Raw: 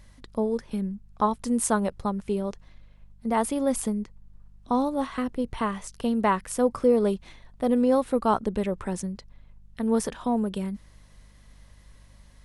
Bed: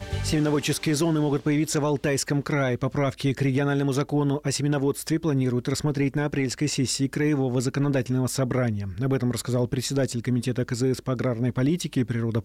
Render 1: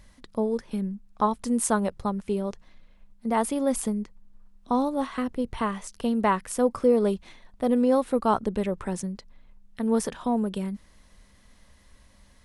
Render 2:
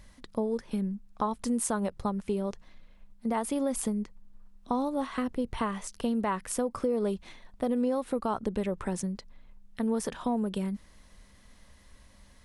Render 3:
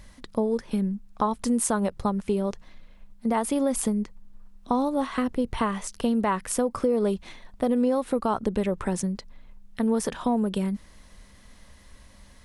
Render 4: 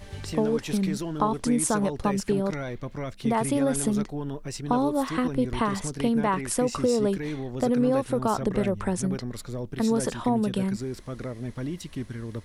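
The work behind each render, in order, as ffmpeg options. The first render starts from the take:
-af "bandreject=f=50:t=h:w=4,bandreject=f=100:t=h:w=4,bandreject=f=150:t=h:w=4"
-af "alimiter=limit=-15dB:level=0:latency=1:release=125,acompressor=threshold=-27dB:ratio=2.5"
-af "volume=5dB"
-filter_complex "[1:a]volume=-9.5dB[a];[0:a][a]amix=inputs=2:normalize=0"

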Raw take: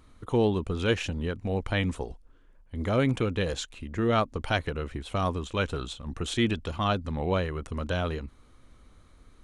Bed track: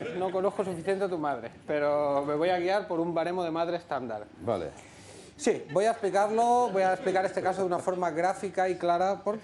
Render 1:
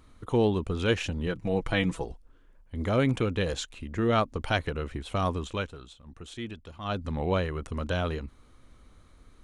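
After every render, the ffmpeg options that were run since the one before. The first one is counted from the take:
-filter_complex "[0:a]asettb=1/sr,asplit=3[a][b][c];[a]atrim=end=1.264[d];[b]atrim=start=1.26:end=2.05,asetpts=PTS-STARTPTS,afade=t=in:d=0.004:c=qsin,afade=t=out:st=0.786:d=0.004:c=qsin,aecho=1:1:6.1:0.65,atrim=end_sample=34839[e];[c]atrim=start=2.046[f];[d][e]acrossfade=d=0.004:c1=hsin:c2=qsin[g];[g][f]acrossfade=d=0.004:c1=qsin:c2=hsin,asplit=3[h][i][j];[h]atrim=end=5.71,asetpts=PTS-STARTPTS,afade=t=out:st=5.5:d=0.21:silence=0.251189[k];[i]atrim=start=5.71:end=6.82,asetpts=PTS-STARTPTS,volume=-12dB[l];[j]atrim=start=6.82,asetpts=PTS-STARTPTS,afade=t=in:d=0.21:silence=0.251189[m];[k][l][m]concat=n=3:v=0:a=1"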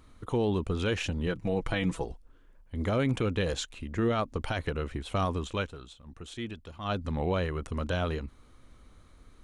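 -af "alimiter=limit=-19.5dB:level=0:latency=1:release=36"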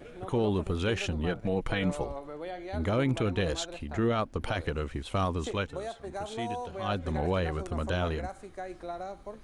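-filter_complex "[1:a]volume=-12.5dB[a];[0:a][a]amix=inputs=2:normalize=0"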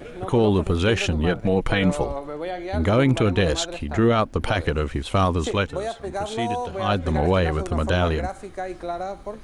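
-af "volume=9dB"

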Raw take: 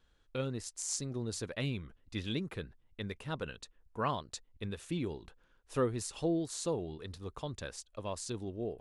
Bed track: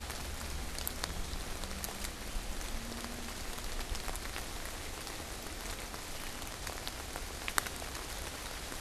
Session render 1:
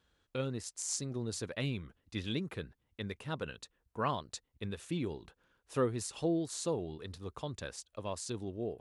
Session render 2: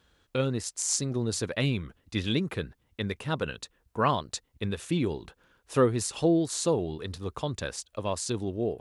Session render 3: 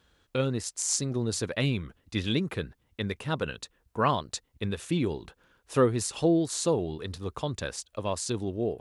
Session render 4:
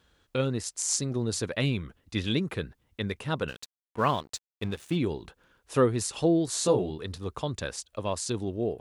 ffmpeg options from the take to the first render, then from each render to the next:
-af "highpass=61"
-af "volume=8.5dB"
-af anull
-filter_complex "[0:a]asettb=1/sr,asplit=3[a][b][c];[a]atrim=end=3.484[d];[b]atrim=start=3.48:end=4.96,asetpts=PTS-STARTPTS,afade=t=in:d=0.004:c=qsin,afade=t=out:st=1.476:d=0.004:c=qsin,aeval=exprs='sgn(val(0))*max(abs(val(0))-0.00562,0)':c=same[e];[c]atrim=start=4.956[f];[d][e]acrossfade=d=0.004:c1=hsin:c2=qsin[g];[g][f]acrossfade=d=0.004:c1=qsin:c2=hsin,asettb=1/sr,asplit=3[h][i][j];[h]atrim=end=6.464[k];[i]atrim=start=6.46:end=6.9,asetpts=PTS-STARTPTS,afade=t=in:d=0.004:c=qsin,afade=t=out:st=0.436:d=0.004:c=qsin,asplit=2[l][m];[m]adelay=16,volume=-2.5dB[n];[l][n]amix=inputs=2:normalize=0,atrim=end_sample=19404[o];[j]atrim=start=6.896[p];[k][o]acrossfade=d=0.004:c1=hsin:c2=qsin[q];[q][p]acrossfade=d=0.004:c1=qsin:c2=hsin"

